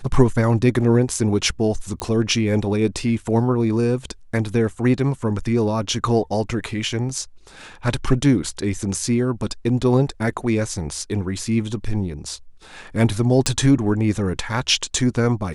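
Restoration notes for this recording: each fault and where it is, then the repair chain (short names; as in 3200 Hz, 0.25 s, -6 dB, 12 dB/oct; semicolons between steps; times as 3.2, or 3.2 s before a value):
2 pop -10 dBFS
13.46 pop -7 dBFS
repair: de-click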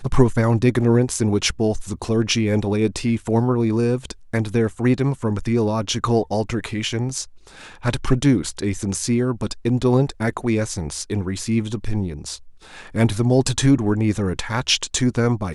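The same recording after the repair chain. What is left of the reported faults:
none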